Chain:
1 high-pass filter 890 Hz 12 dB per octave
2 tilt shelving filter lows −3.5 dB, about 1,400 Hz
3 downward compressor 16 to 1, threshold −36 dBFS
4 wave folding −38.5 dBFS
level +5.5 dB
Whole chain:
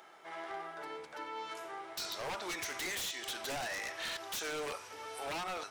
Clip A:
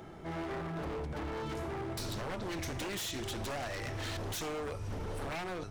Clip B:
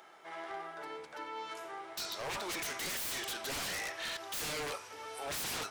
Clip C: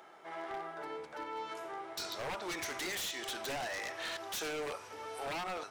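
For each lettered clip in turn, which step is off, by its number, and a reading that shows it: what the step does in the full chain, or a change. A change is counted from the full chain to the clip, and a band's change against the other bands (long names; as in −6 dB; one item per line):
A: 1, 125 Hz band +20.5 dB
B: 3, average gain reduction 3.0 dB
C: 2, 8 kHz band −2.5 dB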